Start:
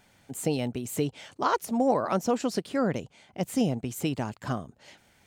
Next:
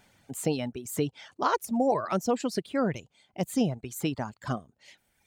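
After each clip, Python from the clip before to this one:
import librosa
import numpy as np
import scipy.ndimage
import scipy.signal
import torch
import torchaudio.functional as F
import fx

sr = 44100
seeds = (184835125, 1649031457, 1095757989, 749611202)

y = fx.dereverb_blind(x, sr, rt60_s=1.4)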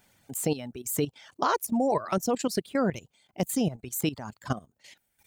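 y = fx.level_steps(x, sr, step_db=14)
y = fx.high_shelf(y, sr, hz=9100.0, db=11.5)
y = y * librosa.db_to_amplitude(4.0)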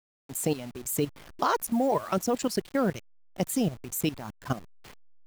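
y = fx.delta_hold(x, sr, step_db=-41.5)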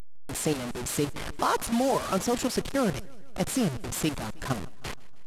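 y = fx.delta_mod(x, sr, bps=64000, step_db=-27.5)
y = fx.echo_feedback(y, sr, ms=157, feedback_pct=59, wet_db=-23.0)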